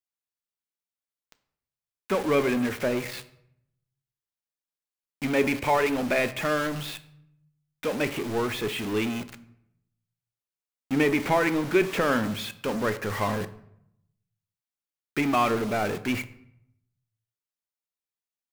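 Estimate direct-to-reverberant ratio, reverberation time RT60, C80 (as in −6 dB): 11.0 dB, 0.75 s, 18.0 dB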